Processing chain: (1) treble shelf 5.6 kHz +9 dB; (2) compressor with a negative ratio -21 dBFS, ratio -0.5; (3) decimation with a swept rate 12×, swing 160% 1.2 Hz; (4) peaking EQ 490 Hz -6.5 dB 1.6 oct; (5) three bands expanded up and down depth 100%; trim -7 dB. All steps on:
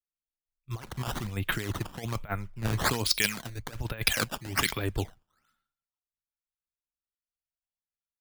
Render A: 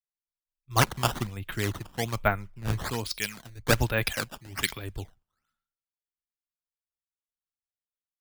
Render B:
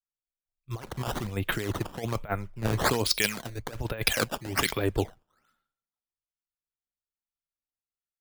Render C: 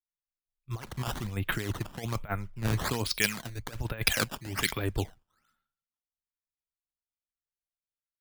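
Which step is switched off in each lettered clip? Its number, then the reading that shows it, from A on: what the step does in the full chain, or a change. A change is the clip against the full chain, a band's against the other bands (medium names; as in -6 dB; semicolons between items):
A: 2, momentary loudness spread change -2 LU; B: 4, 500 Hz band +5.5 dB; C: 1, 4 kHz band -2.0 dB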